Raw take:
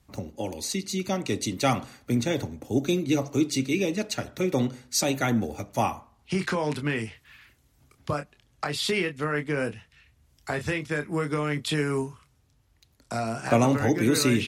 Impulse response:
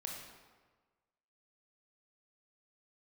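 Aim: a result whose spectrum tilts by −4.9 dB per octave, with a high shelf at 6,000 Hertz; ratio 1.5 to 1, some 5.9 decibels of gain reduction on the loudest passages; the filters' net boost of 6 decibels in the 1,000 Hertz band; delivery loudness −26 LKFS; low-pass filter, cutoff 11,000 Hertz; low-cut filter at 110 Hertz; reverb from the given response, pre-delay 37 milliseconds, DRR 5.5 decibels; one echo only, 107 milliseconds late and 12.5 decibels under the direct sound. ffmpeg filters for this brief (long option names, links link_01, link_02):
-filter_complex "[0:a]highpass=110,lowpass=11000,equalizer=frequency=1000:width_type=o:gain=8.5,highshelf=frequency=6000:gain=-6.5,acompressor=threshold=-30dB:ratio=1.5,aecho=1:1:107:0.237,asplit=2[link_01][link_02];[1:a]atrim=start_sample=2205,adelay=37[link_03];[link_02][link_03]afir=irnorm=-1:irlink=0,volume=-4.5dB[link_04];[link_01][link_04]amix=inputs=2:normalize=0,volume=2.5dB"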